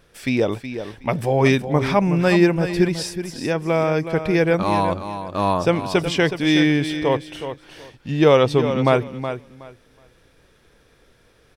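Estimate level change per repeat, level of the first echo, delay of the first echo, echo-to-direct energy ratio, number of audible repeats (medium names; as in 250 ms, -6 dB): -14.5 dB, -10.0 dB, 370 ms, -10.0 dB, 2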